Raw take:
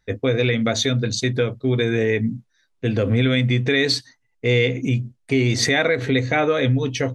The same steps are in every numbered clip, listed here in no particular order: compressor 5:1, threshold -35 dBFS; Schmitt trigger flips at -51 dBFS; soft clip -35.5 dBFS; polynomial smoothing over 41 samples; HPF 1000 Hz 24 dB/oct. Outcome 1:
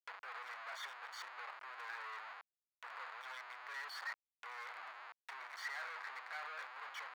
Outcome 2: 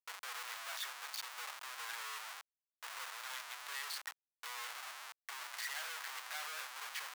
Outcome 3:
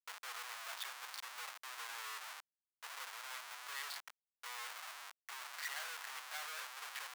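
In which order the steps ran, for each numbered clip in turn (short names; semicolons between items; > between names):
Schmitt trigger > polynomial smoothing > compressor > soft clip > HPF; polynomial smoothing > soft clip > Schmitt trigger > HPF > compressor; polynomial smoothing > compressor > Schmitt trigger > soft clip > HPF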